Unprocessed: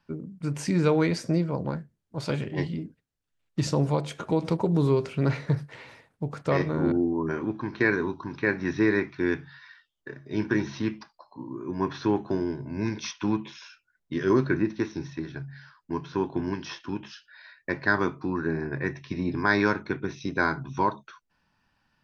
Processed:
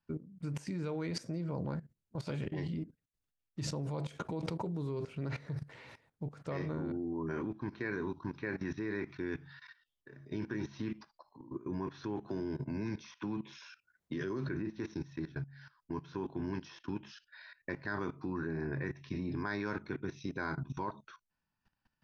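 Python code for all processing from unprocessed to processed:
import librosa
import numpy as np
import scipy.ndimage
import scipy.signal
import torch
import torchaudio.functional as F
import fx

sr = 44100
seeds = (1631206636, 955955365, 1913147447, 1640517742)

y = fx.chain(x, sr, fx.highpass(hz=79.0, slope=6),
    fx.band_squash(depth_pct=40), at=(12.28, 14.49))
y = fx.low_shelf(y, sr, hz=210.0, db=4.0)
y = fx.level_steps(y, sr, step_db=17)
y = y * 10.0 ** (-2.5 / 20.0)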